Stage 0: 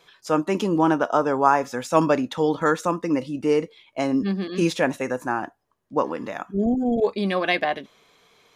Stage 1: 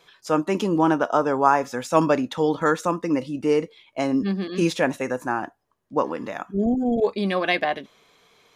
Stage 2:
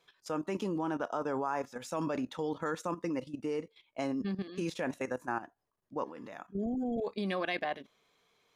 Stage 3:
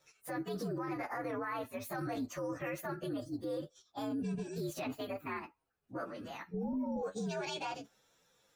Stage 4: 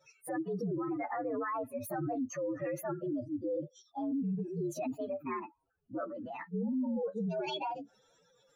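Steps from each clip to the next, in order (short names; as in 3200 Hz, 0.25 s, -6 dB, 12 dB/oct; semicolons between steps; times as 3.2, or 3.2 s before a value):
nothing audible
level quantiser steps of 13 dB; gain -7 dB
inharmonic rescaling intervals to 121%; limiter -35.5 dBFS, peak gain reduction 11 dB; gain +5 dB
spectral contrast raised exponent 2.2; gain +3.5 dB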